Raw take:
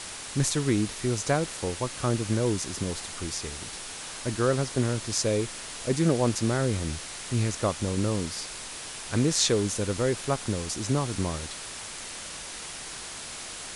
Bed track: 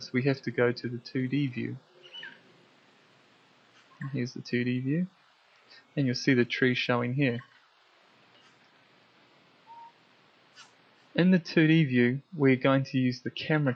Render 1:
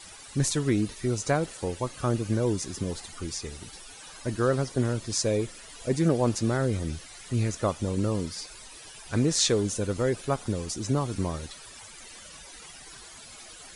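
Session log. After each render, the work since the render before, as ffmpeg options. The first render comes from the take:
-af "afftdn=nr=14:nf=-39"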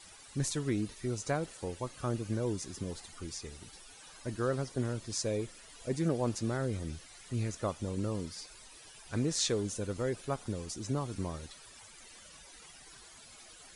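-af "volume=-7.5dB"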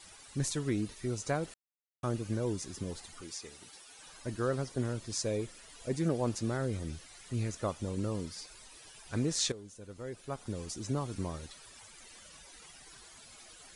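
-filter_complex "[0:a]asettb=1/sr,asplit=3[a][b][c];[a]atrim=end=3.214[d];[b]atrim=start=3.21:end=3.99,asetpts=PTS-STARTPTS,afade=t=in:d=0.004:c=qsin,afade=t=out:st=0.776:d=0.004:c=qsin,highpass=f=350:p=1[e];[c]atrim=start=3.986[f];[d][e]acrossfade=d=0.004:c1=hsin:c2=qsin[g];[g][f]acrossfade=d=0.004:c1=qsin:c2=hsin,asplit=4[h][i][j][k];[h]atrim=end=1.54,asetpts=PTS-STARTPTS,afade=t=out:st=1.536:d=0.004:c=hsin[l];[i]atrim=start=1.54:end=2.03,asetpts=PTS-STARTPTS,volume=0[m];[j]atrim=start=2.03:end=9.52,asetpts=PTS-STARTPTS,afade=t=in:d=0.004:c=hsin,afade=t=out:st=7.486:d=0.004:c=hsin:silence=0.177828[n];[k]atrim=start=9.52,asetpts=PTS-STARTPTS,afade=t=in:d=1.11:c=qua:silence=0.177828[o];[l][m][n][o]concat=n=4:v=0:a=1"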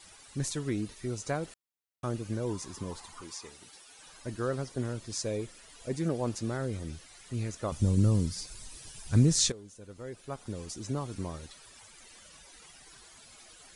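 -filter_complex "[0:a]asettb=1/sr,asplit=3[a][b][c];[a]atrim=end=2.494[d];[b]atrim=start=2.49:end=3.52,asetpts=PTS-STARTPTS,afade=t=in:d=0.004:c=qsin,afade=t=out:st=1.026:d=0.004:c=qsin,equalizer=f=1k:w=3:g=13.5[e];[c]atrim=start=3.516[f];[d][e]acrossfade=d=0.004:c1=hsin:c2=qsin[g];[g][f]acrossfade=d=0.004:c1=qsin:c2=hsin,asettb=1/sr,asplit=3[h][i][j];[h]atrim=end=7.724[k];[i]atrim=start=7.72:end=9.5,asetpts=PTS-STARTPTS,afade=t=in:d=0.004:c=qsin,afade=t=out:st=1.776:d=0.004:c=qsin,bass=f=250:g=14,treble=f=4k:g=7[l];[j]atrim=start=9.496[m];[k][l]acrossfade=d=0.004:c1=hsin:c2=qsin[n];[n][m]acrossfade=d=0.004:c1=qsin:c2=hsin"

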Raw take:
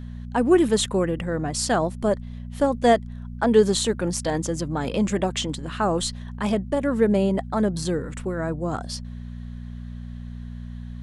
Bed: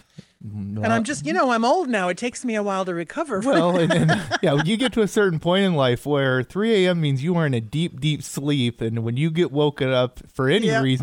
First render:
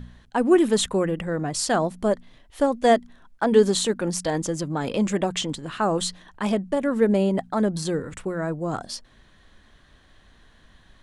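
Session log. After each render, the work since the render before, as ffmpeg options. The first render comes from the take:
-af "bandreject=f=60:t=h:w=4,bandreject=f=120:t=h:w=4,bandreject=f=180:t=h:w=4,bandreject=f=240:t=h:w=4"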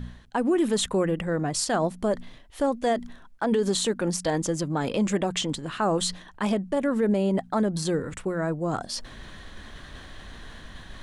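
-af "alimiter=limit=-15.5dB:level=0:latency=1:release=71,areverse,acompressor=mode=upward:threshold=-29dB:ratio=2.5,areverse"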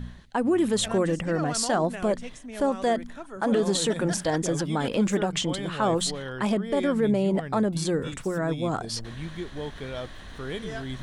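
-filter_complex "[1:a]volume=-15.5dB[a];[0:a][a]amix=inputs=2:normalize=0"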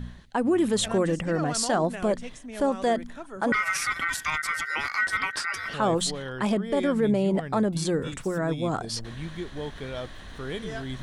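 -filter_complex "[0:a]asettb=1/sr,asplit=3[a][b][c];[a]atrim=end=3.524[d];[b]atrim=start=3.52:end=5.74,asetpts=PTS-STARTPTS,afade=t=in:d=0.004:c=qsin,afade=t=out:st=2.216:d=0.004:c=qsin,aeval=exprs='val(0)*sin(2*PI*1700*n/s)':c=same[e];[c]atrim=start=5.736[f];[d][e]acrossfade=d=0.004:c1=hsin:c2=qsin[g];[g][f]acrossfade=d=0.004:c1=qsin:c2=hsin"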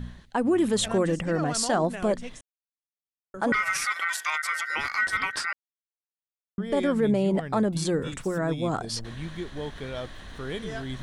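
-filter_complex "[0:a]asettb=1/sr,asplit=3[a][b][c];[a]atrim=end=3.854[d];[b]atrim=start=3.85:end=4.7,asetpts=PTS-STARTPTS,afade=t=in:d=0.004:c=qsin,afade=t=out:st=0.846:d=0.004:c=qsin,highpass=f=470:w=0.5412,highpass=f=470:w=1.3066[e];[c]atrim=start=4.696[f];[d][e]acrossfade=d=0.004:c1=hsin:c2=qsin[g];[g][f]acrossfade=d=0.004:c1=qsin:c2=hsin,asplit=5[h][i][j][k][l];[h]atrim=end=2.41,asetpts=PTS-STARTPTS,afade=t=out:st=2.406:d=0.004:c=hsin[m];[i]atrim=start=2.41:end=3.34,asetpts=PTS-STARTPTS,volume=0[n];[j]atrim=start=3.34:end=5.53,asetpts=PTS-STARTPTS,afade=t=in:d=0.004:c=hsin,afade=t=out:st=2.186:d=0.004:c=hsin[o];[k]atrim=start=5.53:end=6.58,asetpts=PTS-STARTPTS,volume=0[p];[l]atrim=start=6.58,asetpts=PTS-STARTPTS,afade=t=in:d=0.004:c=hsin[q];[m][n][o][p][q]concat=n=5:v=0:a=1"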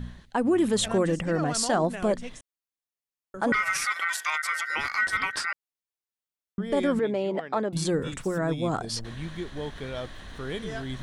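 -filter_complex "[0:a]asettb=1/sr,asplit=3[a][b][c];[a]atrim=end=6.994[d];[b]atrim=start=6.99:end=7.73,asetpts=PTS-STARTPTS,afade=t=in:d=0.004:c=qsin,afade=t=out:st=0.736:d=0.004:c=qsin,highpass=340,lowpass=4.5k[e];[c]atrim=start=7.726[f];[d][e]acrossfade=d=0.004:c1=hsin:c2=qsin[g];[g][f]acrossfade=d=0.004:c1=qsin:c2=hsin"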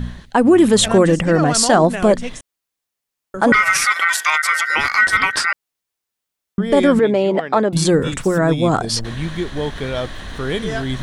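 -af "volume=11.5dB"

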